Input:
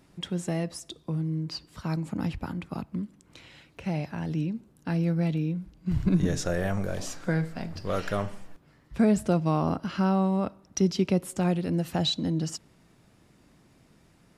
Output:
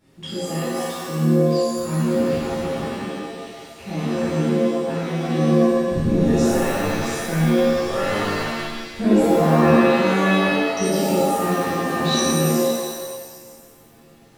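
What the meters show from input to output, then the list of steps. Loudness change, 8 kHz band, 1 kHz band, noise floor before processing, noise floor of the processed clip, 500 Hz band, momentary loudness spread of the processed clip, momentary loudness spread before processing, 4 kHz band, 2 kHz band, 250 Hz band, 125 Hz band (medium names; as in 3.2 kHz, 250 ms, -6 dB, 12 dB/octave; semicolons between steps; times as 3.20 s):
+9.0 dB, +11.0 dB, +12.0 dB, -61 dBFS, -49 dBFS, +12.5 dB, 13 LU, 11 LU, +8.0 dB, +14.0 dB, +8.0 dB, +5.0 dB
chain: repeats whose band climbs or falls 188 ms, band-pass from 1.2 kHz, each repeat 0.7 oct, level -4.5 dB; pitch-shifted reverb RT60 1.3 s, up +7 st, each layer -2 dB, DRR -11 dB; trim -7 dB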